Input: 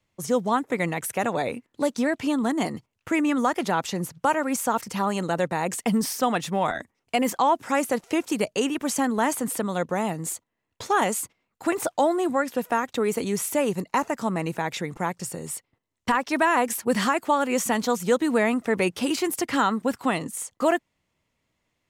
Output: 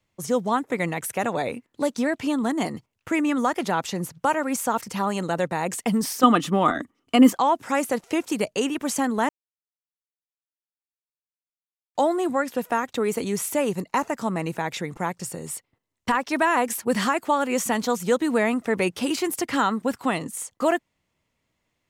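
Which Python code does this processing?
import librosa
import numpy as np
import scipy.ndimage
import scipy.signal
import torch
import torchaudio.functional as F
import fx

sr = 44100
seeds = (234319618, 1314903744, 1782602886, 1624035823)

y = fx.small_body(x, sr, hz=(280.0, 1200.0, 3000.0), ring_ms=30, db=14, at=(6.23, 7.31))
y = fx.edit(y, sr, fx.silence(start_s=9.29, length_s=2.66), tone=tone)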